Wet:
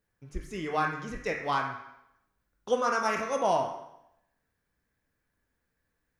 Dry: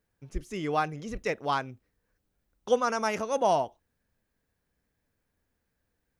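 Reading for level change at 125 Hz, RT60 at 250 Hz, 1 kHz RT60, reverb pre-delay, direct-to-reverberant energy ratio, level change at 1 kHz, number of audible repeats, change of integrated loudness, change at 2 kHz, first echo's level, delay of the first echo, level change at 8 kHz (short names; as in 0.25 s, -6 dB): -2.0 dB, 0.85 s, 0.85 s, 13 ms, -1.5 dB, 0.0 dB, none, -0.5 dB, +2.5 dB, none, none, -1.5 dB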